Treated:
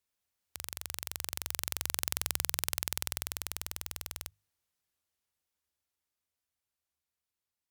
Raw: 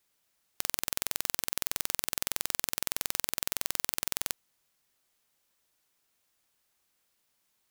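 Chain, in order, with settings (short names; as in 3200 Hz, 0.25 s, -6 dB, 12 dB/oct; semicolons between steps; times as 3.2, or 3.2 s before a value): Doppler pass-by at 2.31, 28 m/s, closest 21 m; bell 77 Hz +14 dB 0.66 oct; notches 50/100/150 Hz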